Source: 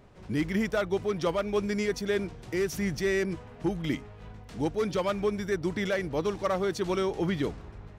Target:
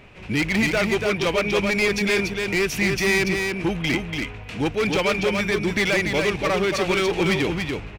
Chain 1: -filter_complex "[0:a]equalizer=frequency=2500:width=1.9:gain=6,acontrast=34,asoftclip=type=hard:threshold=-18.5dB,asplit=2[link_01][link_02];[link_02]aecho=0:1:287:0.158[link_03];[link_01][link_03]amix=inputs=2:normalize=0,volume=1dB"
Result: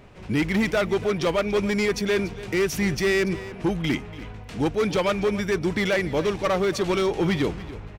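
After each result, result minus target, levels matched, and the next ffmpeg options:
echo-to-direct −11.5 dB; 2,000 Hz band −4.0 dB
-filter_complex "[0:a]equalizer=frequency=2500:width=1.9:gain=6,acontrast=34,asoftclip=type=hard:threshold=-18.5dB,asplit=2[link_01][link_02];[link_02]aecho=0:1:287:0.596[link_03];[link_01][link_03]amix=inputs=2:normalize=0,volume=1dB"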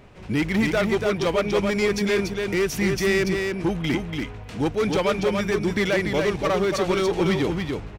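2,000 Hz band −4.0 dB
-filter_complex "[0:a]equalizer=frequency=2500:width=1.9:gain=16.5,acontrast=34,asoftclip=type=hard:threshold=-18.5dB,asplit=2[link_01][link_02];[link_02]aecho=0:1:287:0.596[link_03];[link_01][link_03]amix=inputs=2:normalize=0,volume=1dB"

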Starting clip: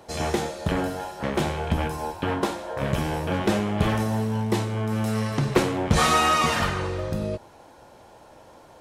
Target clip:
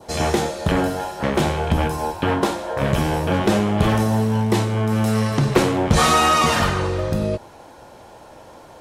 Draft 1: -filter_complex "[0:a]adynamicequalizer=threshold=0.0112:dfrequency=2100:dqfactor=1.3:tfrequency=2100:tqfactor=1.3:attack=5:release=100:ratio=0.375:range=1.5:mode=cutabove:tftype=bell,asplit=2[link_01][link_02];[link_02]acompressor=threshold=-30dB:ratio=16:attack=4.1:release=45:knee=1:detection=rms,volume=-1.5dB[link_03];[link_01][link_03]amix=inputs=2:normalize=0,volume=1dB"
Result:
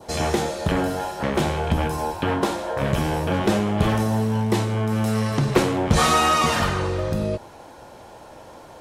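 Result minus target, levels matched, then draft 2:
downward compressor: peak gain reduction +9.5 dB
-filter_complex "[0:a]adynamicequalizer=threshold=0.0112:dfrequency=2100:dqfactor=1.3:tfrequency=2100:tqfactor=1.3:attack=5:release=100:ratio=0.375:range=1.5:mode=cutabove:tftype=bell,asplit=2[link_01][link_02];[link_02]acompressor=threshold=-20dB:ratio=16:attack=4.1:release=45:knee=1:detection=rms,volume=-1.5dB[link_03];[link_01][link_03]amix=inputs=2:normalize=0,volume=1dB"

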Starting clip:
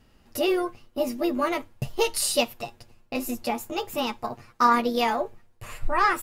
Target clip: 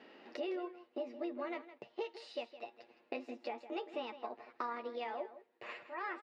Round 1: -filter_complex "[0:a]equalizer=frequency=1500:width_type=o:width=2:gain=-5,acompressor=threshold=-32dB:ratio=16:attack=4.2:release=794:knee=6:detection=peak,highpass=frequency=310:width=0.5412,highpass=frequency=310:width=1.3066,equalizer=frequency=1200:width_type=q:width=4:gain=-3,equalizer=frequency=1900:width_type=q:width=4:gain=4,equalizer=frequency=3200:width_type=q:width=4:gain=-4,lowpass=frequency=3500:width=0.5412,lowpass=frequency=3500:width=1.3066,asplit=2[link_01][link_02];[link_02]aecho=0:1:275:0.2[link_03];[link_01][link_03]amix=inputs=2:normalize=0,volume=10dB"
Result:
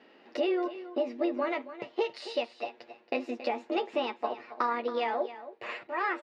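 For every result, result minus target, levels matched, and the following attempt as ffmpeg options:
echo 113 ms late; downward compressor: peak gain reduction −11 dB
-filter_complex "[0:a]equalizer=frequency=1500:width_type=o:width=2:gain=-5,acompressor=threshold=-32dB:ratio=16:attack=4.2:release=794:knee=6:detection=peak,highpass=frequency=310:width=0.5412,highpass=frequency=310:width=1.3066,equalizer=frequency=1200:width_type=q:width=4:gain=-3,equalizer=frequency=1900:width_type=q:width=4:gain=4,equalizer=frequency=3200:width_type=q:width=4:gain=-4,lowpass=frequency=3500:width=0.5412,lowpass=frequency=3500:width=1.3066,asplit=2[link_01][link_02];[link_02]aecho=0:1:162:0.2[link_03];[link_01][link_03]amix=inputs=2:normalize=0,volume=10dB"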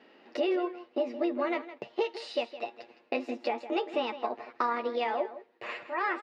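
downward compressor: peak gain reduction −11 dB
-filter_complex "[0:a]equalizer=frequency=1500:width_type=o:width=2:gain=-5,acompressor=threshold=-43.5dB:ratio=16:attack=4.2:release=794:knee=6:detection=peak,highpass=frequency=310:width=0.5412,highpass=frequency=310:width=1.3066,equalizer=frequency=1200:width_type=q:width=4:gain=-3,equalizer=frequency=1900:width_type=q:width=4:gain=4,equalizer=frequency=3200:width_type=q:width=4:gain=-4,lowpass=frequency=3500:width=0.5412,lowpass=frequency=3500:width=1.3066,asplit=2[link_01][link_02];[link_02]aecho=0:1:162:0.2[link_03];[link_01][link_03]amix=inputs=2:normalize=0,volume=10dB"

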